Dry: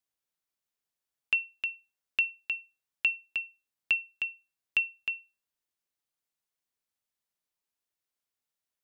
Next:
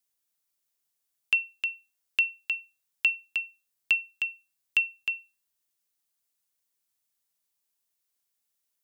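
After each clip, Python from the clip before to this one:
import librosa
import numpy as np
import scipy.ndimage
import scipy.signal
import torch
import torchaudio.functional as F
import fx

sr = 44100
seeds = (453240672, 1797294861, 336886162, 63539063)

y = fx.high_shelf(x, sr, hz=4600.0, db=11.0)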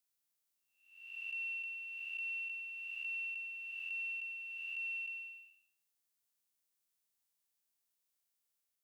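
y = fx.spec_blur(x, sr, span_ms=473.0)
y = y * 10.0 ** (-2.5 / 20.0)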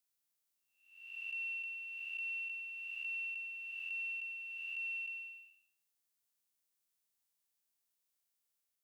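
y = x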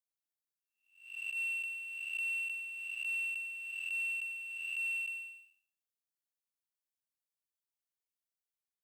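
y = fx.power_curve(x, sr, exponent=1.4)
y = fx.attack_slew(y, sr, db_per_s=120.0)
y = y * 10.0 ** (6.0 / 20.0)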